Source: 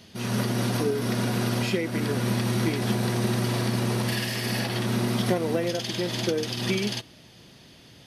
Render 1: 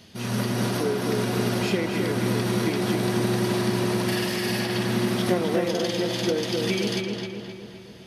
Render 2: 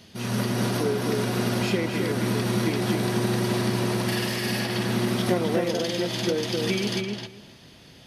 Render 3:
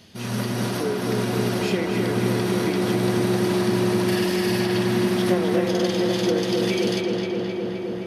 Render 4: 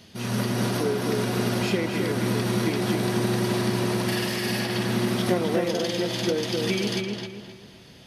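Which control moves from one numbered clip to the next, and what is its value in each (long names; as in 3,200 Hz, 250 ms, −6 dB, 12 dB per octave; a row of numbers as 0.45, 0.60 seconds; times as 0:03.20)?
feedback echo with a low-pass in the loop, feedback: 55, 16, 85, 37%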